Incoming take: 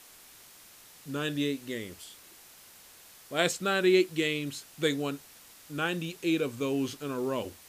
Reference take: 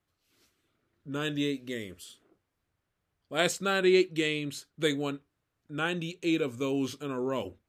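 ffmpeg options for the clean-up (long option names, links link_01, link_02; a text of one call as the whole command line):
ffmpeg -i in.wav -af "afftdn=noise_reduction=27:noise_floor=-54" out.wav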